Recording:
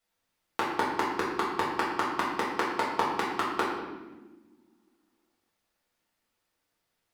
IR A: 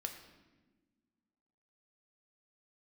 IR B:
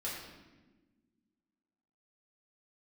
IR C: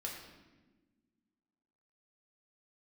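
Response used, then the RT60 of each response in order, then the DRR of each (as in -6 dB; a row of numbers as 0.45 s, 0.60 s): B; 1.3 s, 1.3 s, 1.3 s; 4.0 dB, -7.5 dB, -2.0 dB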